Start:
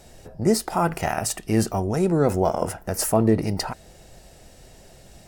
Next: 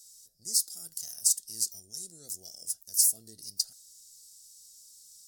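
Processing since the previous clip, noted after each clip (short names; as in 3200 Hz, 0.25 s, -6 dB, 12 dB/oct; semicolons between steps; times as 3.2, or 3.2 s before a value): inverse Chebyshev high-pass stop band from 2600 Hz, stop band 40 dB; gain +4 dB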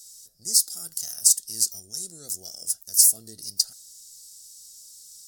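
bell 1200 Hz +6 dB 0.86 oct; gain +7 dB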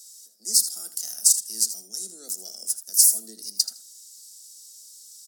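steep high-pass 190 Hz 96 dB/oct; feedback echo 80 ms, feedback 15%, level -12.5 dB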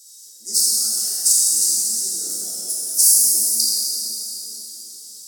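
plate-style reverb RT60 4.5 s, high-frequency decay 0.8×, DRR -8 dB; gain -1.5 dB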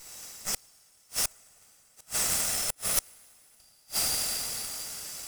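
minimum comb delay 1.5 ms; flipped gate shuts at -13 dBFS, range -39 dB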